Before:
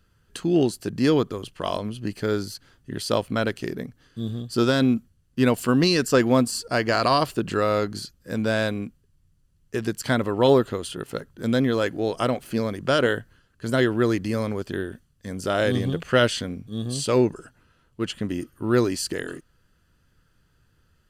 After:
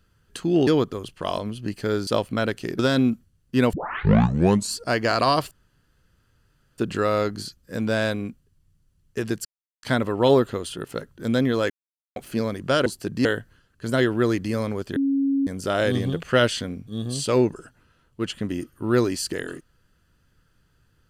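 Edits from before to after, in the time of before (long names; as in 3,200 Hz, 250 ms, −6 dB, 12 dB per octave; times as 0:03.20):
0:00.67–0:01.06: move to 0:13.05
0:02.46–0:03.06: remove
0:03.78–0:04.63: remove
0:05.57: tape start 1.01 s
0:07.35: splice in room tone 1.27 s
0:10.02: splice in silence 0.38 s
0:11.89–0:12.35: silence
0:14.76–0:15.27: beep over 275 Hz −18.5 dBFS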